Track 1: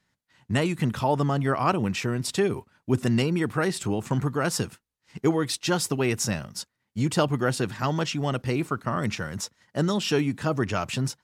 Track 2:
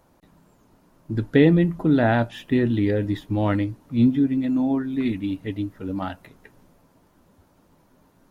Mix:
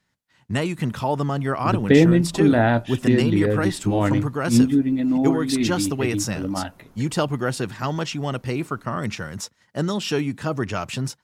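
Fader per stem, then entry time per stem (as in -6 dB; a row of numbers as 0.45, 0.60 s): +0.5, +1.5 dB; 0.00, 0.55 s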